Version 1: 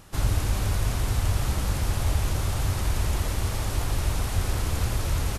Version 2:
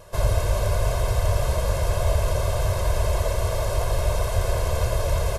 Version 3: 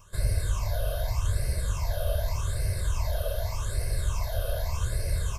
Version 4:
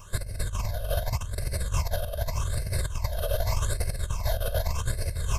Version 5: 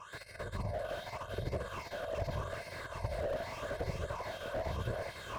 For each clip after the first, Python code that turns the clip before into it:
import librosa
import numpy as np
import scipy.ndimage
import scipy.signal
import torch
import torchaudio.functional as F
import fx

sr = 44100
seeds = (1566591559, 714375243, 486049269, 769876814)

y1 = fx.peak_eq(x, sr, hz=650.0, db=13.5, octaves=1.0)
y1 = y1 + 1.0 * np.pad(y1, (int(1.9 * sr / 1000.0), 0))[:len(y1)]
y1 = y1 * 10.0 ** (-3.0 / 20.0)
y2 = fx.high_shelf(y1, sr, hz=4600.0, db=7.5)
y2 = fx.phaser_stages(y2, sr, stages=8, low_hz=280.0, high_hz=1000.0, hz=0.84, feedback_pct=40)
y2 = y2 * 10.0 ** (-6.5 / 20.0)
y3 = fx.over_compress(y2, sr, threshold_db=-30.0, ratio=-0.5)
y3 = y3 * 10.0 ** (3.5 / 20.0)
y4 = fx.filter_lfo_bandpass(y3, sr, shape='sine', hz=1.2, low_hz=300.0, high_hz=2800.0, q=1.1)
y4 = fx.echo_thinned(y4, sr, ms=393, feedback_pct=62, hz=420.0, wet_db=-9.0)
y4 = fx.slew_limit(y4, sr, full_power_hz=7.7)
y4 = y4 * 10.0 ** (4.5 / 20.0)